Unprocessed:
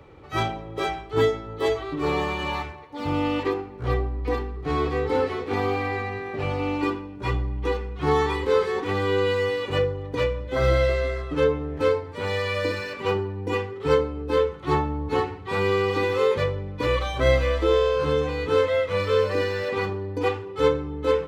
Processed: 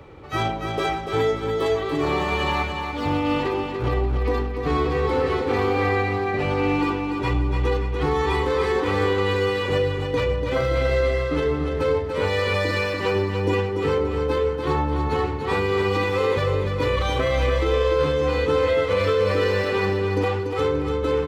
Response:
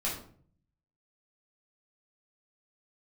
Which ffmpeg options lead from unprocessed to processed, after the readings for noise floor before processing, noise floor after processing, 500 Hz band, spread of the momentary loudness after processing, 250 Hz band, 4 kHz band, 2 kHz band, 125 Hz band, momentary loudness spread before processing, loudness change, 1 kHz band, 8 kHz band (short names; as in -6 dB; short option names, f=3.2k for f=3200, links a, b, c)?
-39 dBFS, -28 dBFS, +1.5 dB, 4 LU, +3.5 dB, +2.5 dB, +3.0 dB, +3.5 dB, 7 LU, +2.0 dB, +3.0 dB, n/a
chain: -filter_complex "[0:a]alimiter=limit=-19dB:level=0:latency=1:release=22,asplit=2[a][b];[b]aecho=0:1:290|580|870|1160|1450:0.501|0.226|0.101|0.0457|0.0206[c];[a][c]amix=inputs=2:normalize=0,volume=4.5dB"